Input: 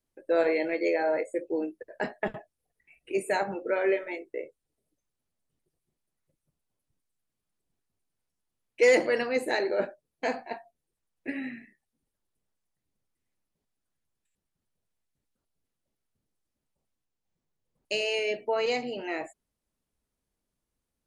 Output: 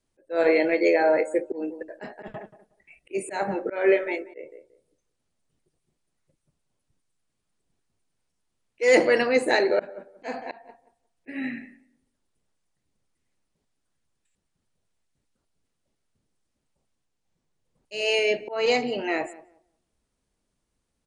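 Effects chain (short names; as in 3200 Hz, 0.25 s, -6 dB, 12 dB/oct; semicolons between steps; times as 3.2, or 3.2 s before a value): downsampling 22050 Hz; tape echo 0.181 s, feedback 22%, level -17 dB, low-pass 1200 Hz; auto swell 0.193 s; gain +6.5 dB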